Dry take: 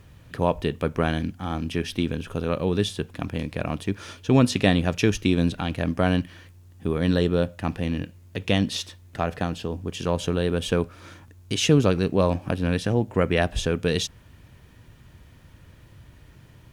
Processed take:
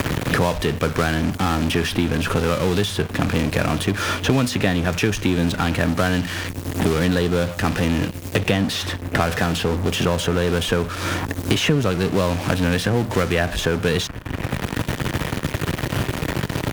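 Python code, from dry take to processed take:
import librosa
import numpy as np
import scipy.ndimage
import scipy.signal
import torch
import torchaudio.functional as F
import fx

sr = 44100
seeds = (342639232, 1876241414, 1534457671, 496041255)

p1 = fx.dynamic_eq(x, sr, hz=1500.0, q=1.6, threshold_db=-44.0, ratio=4.0, max_db=6)
p2 = fx.fuzz(p1, sr, gain_db=46.0, gate_db=-48.0)
p3 = p1 + (p2 * 10.0 ** (-12.0 / 20.0))
p4 = fx.band_squash(p3, sr, depth_pct=100)
y = p4 * 10.0 ** (-1.0 / 20.0)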